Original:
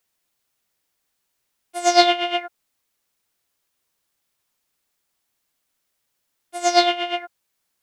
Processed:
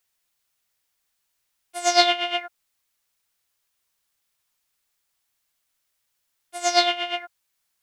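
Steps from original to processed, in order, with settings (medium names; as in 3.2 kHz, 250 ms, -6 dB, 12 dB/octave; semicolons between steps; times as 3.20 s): peaking EQ 290 Hz -8 dB 2.6 oct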